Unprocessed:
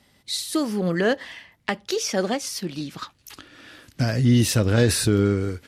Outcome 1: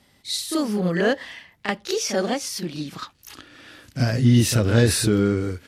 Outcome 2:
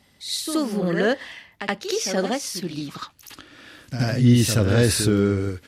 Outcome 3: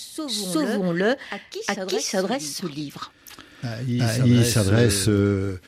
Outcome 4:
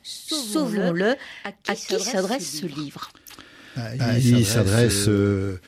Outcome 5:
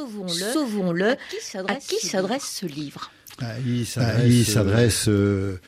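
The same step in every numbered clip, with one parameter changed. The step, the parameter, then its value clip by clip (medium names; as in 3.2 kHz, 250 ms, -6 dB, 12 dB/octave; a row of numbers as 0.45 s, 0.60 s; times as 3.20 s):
reverse echo, time: 34 ms, 74 ms, 367 ms, 235 ms, 592 ms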